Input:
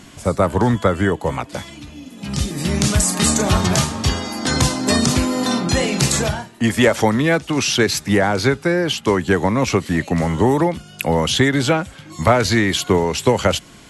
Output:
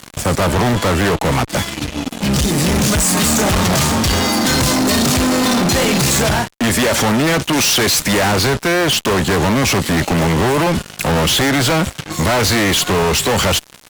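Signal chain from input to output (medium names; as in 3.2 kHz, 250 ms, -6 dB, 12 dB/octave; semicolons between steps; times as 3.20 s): 7.53–8.32 s: treble shelf 2.2 kHz +8 dB; fuzz box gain 33 dB, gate -37 dBFS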